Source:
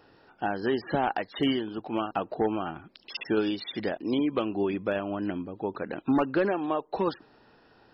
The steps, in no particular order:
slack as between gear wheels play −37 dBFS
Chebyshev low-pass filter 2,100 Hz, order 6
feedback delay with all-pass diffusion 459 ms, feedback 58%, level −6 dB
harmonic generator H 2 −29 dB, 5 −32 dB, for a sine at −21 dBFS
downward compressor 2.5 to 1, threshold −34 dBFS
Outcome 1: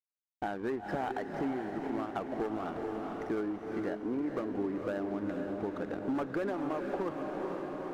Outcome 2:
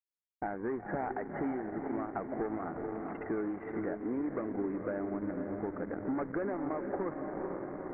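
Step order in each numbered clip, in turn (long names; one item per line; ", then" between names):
Chebyshev low-pass filter, then slack as between gear wheels, then harmonic generator, then feedback delay with all-pass diffusion, then downward compressor
harmonic generator, then feedback delay with all-pass diffusion, then downward compressor, then slack as between gear wheels, then Chebyshev low-pass filter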